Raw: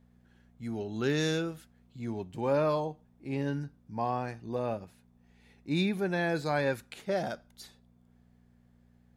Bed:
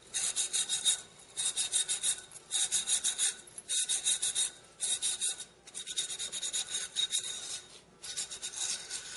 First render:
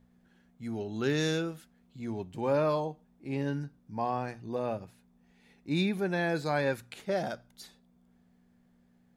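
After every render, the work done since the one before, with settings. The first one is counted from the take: de-hum 60 Hz, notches 2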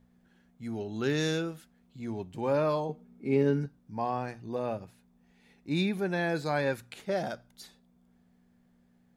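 2.89–3.66 s: small resonant body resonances 220/410/1300/2200 Hz, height 13 dB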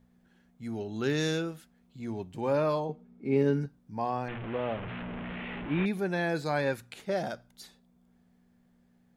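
2.78–3.35 s: low-pass 5.3 kHz -> 3.2 kHz 6 dB/octave; 4.28–5.86 s: one-bit delta coder 16 kbps, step -32 dBFS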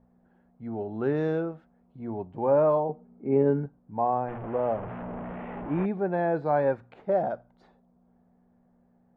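low-pass 1.2 kHz 12 dB/octave; peaking EQ 720 Hz +8 dB 1.5 oct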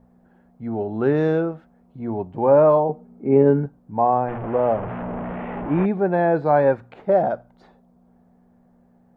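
trim +7.5 dB

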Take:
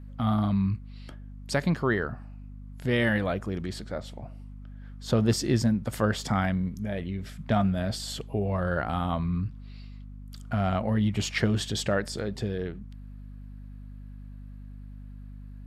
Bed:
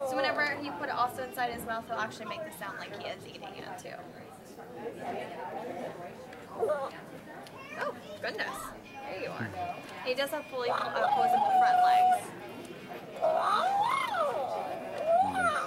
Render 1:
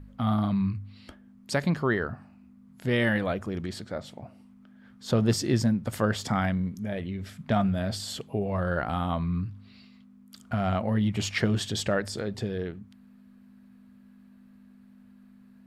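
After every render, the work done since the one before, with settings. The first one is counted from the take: de-hum 50 Hz, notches 3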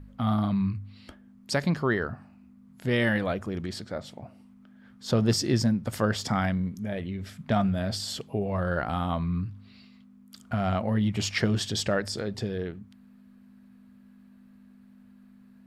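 dynamic bell 5.2 kHz, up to +5 dB, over -54 dBFS, Q 3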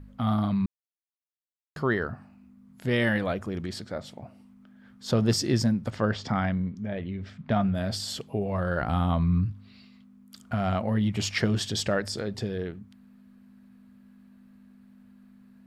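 0.66–1.76 s: mute; 5.90–7.75 s: distance through air 150 m; 8.81–9.52 s: bass shelf 180 Hz +8.5 dB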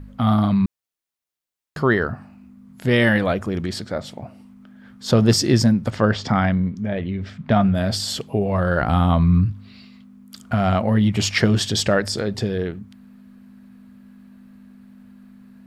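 trim +8 dB

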